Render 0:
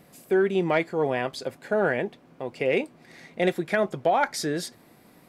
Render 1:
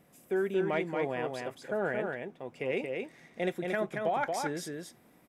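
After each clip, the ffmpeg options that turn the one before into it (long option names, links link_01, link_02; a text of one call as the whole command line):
ffmpeg -i in.wav -filter_complex "[0:a]equalizer=frequency=4400:width=5.1:gain=-9,asplit=2[link_01][link_02];[link_02]aecho=0:1:228:0.631[link_03];[link_01][link_03]amix=inputs=2:normalize=0,volume=-8.5dB" out.wav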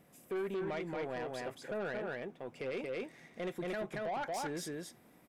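ffmpeg -i in.wav -af "alimiter=limit=-24dB:level=0:latency=1:release=117,asoftclip=type=tanh:threshold=-31.5dB,volume=-1dB" out.wav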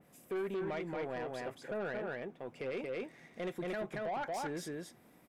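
ffmpeg -i in.wav -af "adynamicequalizer=threshold=0.00126:dfrequency=3000:dqfactor=0.7:tfrequency=3000:tqfactor=0.7:attack=5:release=100:ratio=0.375:range=2:mode=cutabove:tftype=highshelf" out.wav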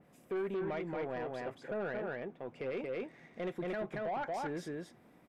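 ffmpeg -i in.wav -af "lowpass=frequency=2800:poles=1,volume=1dB" out.wav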